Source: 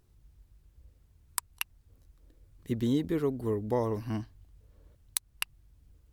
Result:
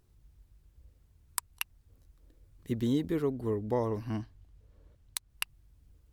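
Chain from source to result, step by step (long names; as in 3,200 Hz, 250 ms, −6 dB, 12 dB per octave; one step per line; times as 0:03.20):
0:03.22–0:05.30: high-shelf EQ 8,000 Hz −7.5 dB
level −1 dB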